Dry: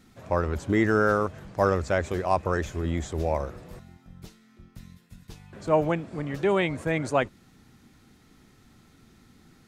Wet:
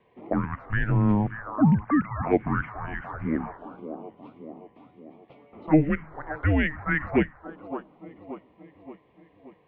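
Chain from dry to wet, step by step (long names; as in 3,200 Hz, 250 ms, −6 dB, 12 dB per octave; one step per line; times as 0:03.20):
0:01.57–0:02.23: three sine waves on the formant tracks
echo with a time of its own for lows and highs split 420 Hz, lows 321 ms, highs 576 ms, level −14 dB
phaser swept by the level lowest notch 290 Hz, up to 1,500 Hz, full sweep at −18 dBFS
single-sideband voice off tune −310 Hz 440–2,700 Hz
level +7.5 dB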